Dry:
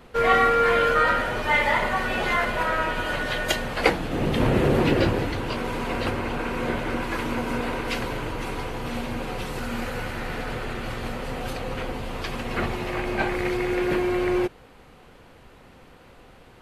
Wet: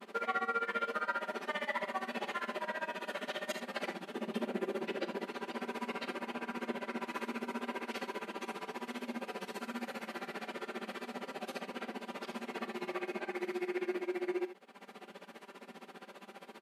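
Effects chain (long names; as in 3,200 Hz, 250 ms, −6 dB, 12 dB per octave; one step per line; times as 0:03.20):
comb filter 5.1 ms, depth 97%
downward compressor 2.5 to 1, threshold −39 dBFS, peak gain reduction 18 dB
granular cloud 64 ms, grains 15 per second, spray 11 ms, pitch spread up and down by 0 semitones
linear-phase brick-wall high-pass 180 Hz
ambience of single reflections 41 ms −16.5 dB, 67 ms −14.5 dB, 80 ms −12.5 dB
level +1 dB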